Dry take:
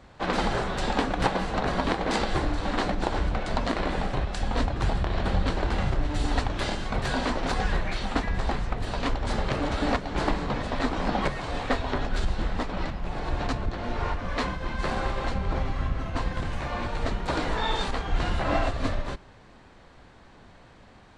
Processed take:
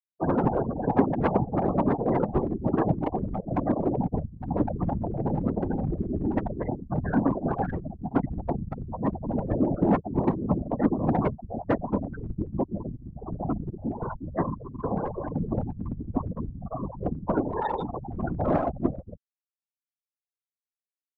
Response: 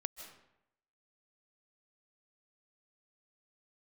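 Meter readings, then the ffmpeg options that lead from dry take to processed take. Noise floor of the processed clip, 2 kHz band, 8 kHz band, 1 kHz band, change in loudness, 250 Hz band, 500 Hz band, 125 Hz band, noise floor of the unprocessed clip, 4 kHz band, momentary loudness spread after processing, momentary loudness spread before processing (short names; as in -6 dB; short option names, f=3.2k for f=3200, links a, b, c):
under -85 dBFS, -12.0 dB, under -35 dB, -2.0 dB, +0.5 dB, +5.0 dB, +2.0 dB, +1.0 dB, -52 dBFS, under -25 dB, 10 LU, 5 LU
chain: -af "adynamicsmooth=sensitivity=5.5:basefreq=860,afftfilt=real='re*gte(hypot(re,im),0.112)':imag='im*gte(hypot(re,im),0.112)':win_size=1024:overlap=0.75,asoftclip=type=hard:threshold=-20.5dB,highpass=170,aemphasis=mode=production:type=50kf,afftfilt=real='hypot(re,im)*cos(2*PI*random(0))':imag='hypot(re,im)*sin(2*PI*random(1))':win_size=512:overlap=0.75,lowpass=2.2k,lowshelf=f=490:g=11.5,volume=5.5dB"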